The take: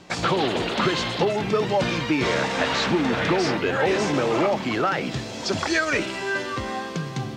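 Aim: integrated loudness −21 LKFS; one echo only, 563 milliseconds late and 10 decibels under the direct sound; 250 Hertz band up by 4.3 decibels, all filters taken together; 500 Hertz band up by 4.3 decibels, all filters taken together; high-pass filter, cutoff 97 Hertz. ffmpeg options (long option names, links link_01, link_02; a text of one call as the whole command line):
ffmpeg -i in.wav -af "highpass=97,equalizer=frequency=250:width_type=o:gain=4.5,equalizer=frequency=500:width_type=o:gain=4,aecho=1:1:563:0.316,volume=-1dB" out.wav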